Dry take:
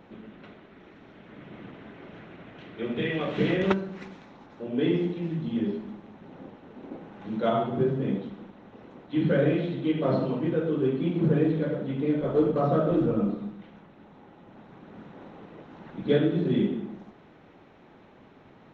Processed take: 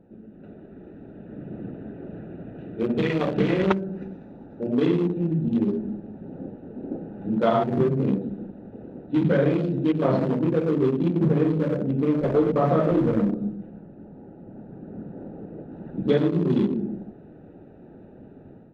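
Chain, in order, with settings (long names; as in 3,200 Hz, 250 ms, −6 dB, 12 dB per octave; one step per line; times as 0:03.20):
adaptive Wiener filter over 41 samples
automatic gain control gain up to 10 dB
0:13.55–0:15.72: high-shelf EQ 3,700 Hz −10.5 dB
downward compressor 2 to 1, threshold −22 dBFS, peak gain reduction 7.5 dB
dynamic equaliser 1,000 Hz, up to +4 dB, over −42 dBFS, Q 1.7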